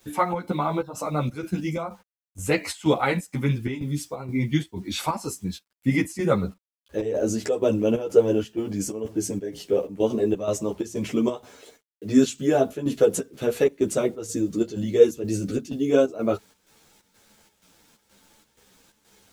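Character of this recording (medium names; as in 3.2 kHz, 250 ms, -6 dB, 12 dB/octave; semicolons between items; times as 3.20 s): a quantiser's noise floor 10-bit, dither none; chopped level 2.1 Hz, depth 65%, duty 70%; a shimmering, thickened sound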